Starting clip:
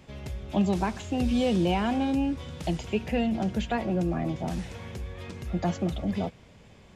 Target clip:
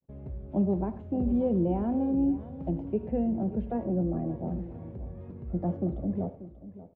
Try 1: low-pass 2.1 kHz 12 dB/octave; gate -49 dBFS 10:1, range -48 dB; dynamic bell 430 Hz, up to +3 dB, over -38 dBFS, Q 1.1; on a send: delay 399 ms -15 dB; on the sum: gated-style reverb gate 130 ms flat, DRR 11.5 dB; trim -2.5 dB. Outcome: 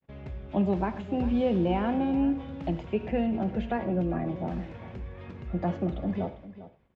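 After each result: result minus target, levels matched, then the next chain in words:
2 kHz band +17.0 dB; echo 186 ms early
low-pass 570 Hz 12 dB/octave; gate -49 dBFS 10:1, range -48 dB; dynamic bell 430 Hz, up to +3 dB, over -38 dBFS, Q 1.1; on a send: delay 399 ms -15 dB; on the sum: gated-style reverb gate 130 ms flat, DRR 11.5 dB; trim -2.5 dB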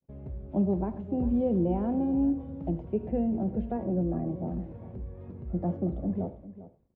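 echo 186 ms early
low-pass 570 Hz 12 dB/octave; gate -49 dBFS 10:1, range -48 dB; dynamic bell 430 Hz, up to +3 dB, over -38 dBFS, Q 1.1; on a send: delay 585 ms -15 dB; on the sum: gated-style reverb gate 130 ms flat, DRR 11.5 dB; trim -2.5 dB

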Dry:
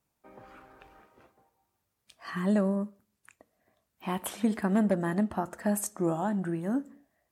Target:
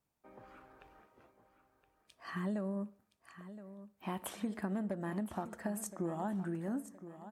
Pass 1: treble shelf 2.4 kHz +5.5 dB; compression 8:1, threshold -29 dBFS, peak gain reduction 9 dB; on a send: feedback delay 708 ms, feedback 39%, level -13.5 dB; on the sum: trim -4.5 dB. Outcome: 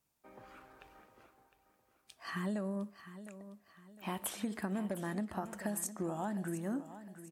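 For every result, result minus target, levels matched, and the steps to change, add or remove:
echo 311 ms early; 4 kHz band +4.0 dB
change: feedback delay 1019 ms, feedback 39%, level -13.5 dB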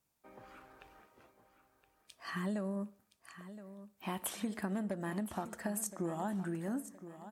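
4 kHz band +4.0 dB
change: treble shelf 2.4 kHz -3 dB

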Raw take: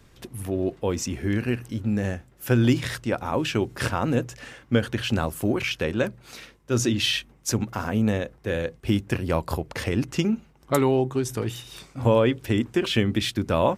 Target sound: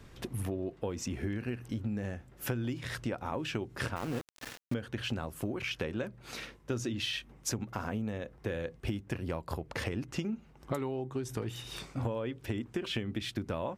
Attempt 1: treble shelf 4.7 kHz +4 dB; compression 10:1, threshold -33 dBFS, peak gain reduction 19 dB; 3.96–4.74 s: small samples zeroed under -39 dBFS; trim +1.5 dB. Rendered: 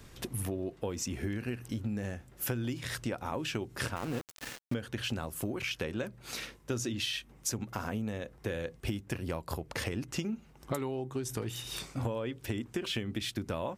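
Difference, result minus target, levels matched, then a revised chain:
8 kHz band +4.0 dB
treble shelf 4.7 kHz -5.5 dB; compression 10:1, threshold -33 dBFS, peak gain reduction 19 dB; 3.96–4.74 s: small samples zeroed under -39 dBFS; trim +1.5 dB

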